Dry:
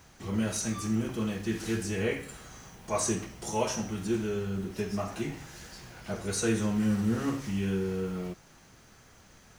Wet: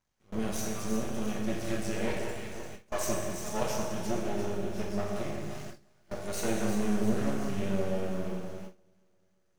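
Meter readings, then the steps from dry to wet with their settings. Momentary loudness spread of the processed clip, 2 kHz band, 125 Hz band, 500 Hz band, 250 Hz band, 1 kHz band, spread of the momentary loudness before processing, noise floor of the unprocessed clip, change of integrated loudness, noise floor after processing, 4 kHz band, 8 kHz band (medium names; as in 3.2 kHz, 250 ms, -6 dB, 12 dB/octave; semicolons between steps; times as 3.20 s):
11 LU, -2.0 dB, -4.0 dB, 0.0 dB, -2.5 dB, 0.0 dB, 16 LU, -57 dBFS, -2.5 dB, -69 dBFS, -2.5 dB, -4.0 dB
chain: half-wave rectifier; dynamic bell 630 Hz, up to +5 dB, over -49 dBFS, Q 2.5; on a send: echo whose repeats swap between lows and highs 174 ms, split 1.7 kHz, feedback 73%, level -5 dB; on the sum: gated-style reverb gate 480 ms falling, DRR 2 dB; gate with hold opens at -24 dBFS; trim -2 dB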